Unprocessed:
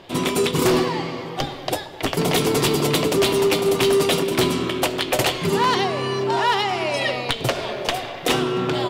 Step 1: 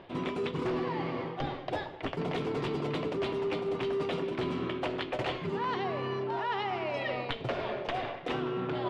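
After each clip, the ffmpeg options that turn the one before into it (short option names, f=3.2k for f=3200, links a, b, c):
-af "lowpass=2.4k,areverse,acompressor=threshold=-28dB:ratio=6,areverse,volume=-2.5dB"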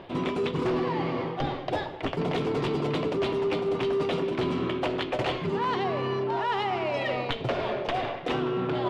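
-filter_complex "[0:a]equalizer=f=1.8k:w=1.5:g=-2,asplit=2[a][b];[b]asoftclip=type=tanh:threshold=-37dB,volume=-9.5dB[c];[a][c]amix=inputs=2:normalize=0,volume=4dB"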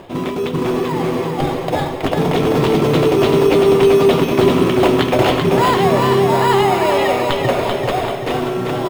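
-filter_complex "[0:a]dynaudnorm=f=240:g=17:m=6dB,asplit=2[a][b];[b]acrusher=samples=15:mix=1:aa=0.000001,volume=-8dB[c];[a][c]amix=inputs=2:normalize=0,aecho=1:1:388|776|1164|1552|1940|2328|2716:0.596|0.304|0.155|0.079|0.0403|0.0206|0.0105,volume=4.5dB"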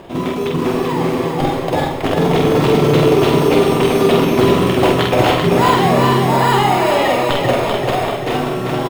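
-filter_complex "[0:a]asplit=2[a][b];[b]adelay=47,volume=-3dB[c];[a][c]amix=inputs=2:normalize=0"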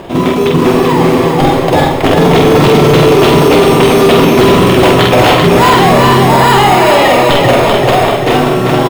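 -af "apsyclip=11dB,volume=-1.5dB"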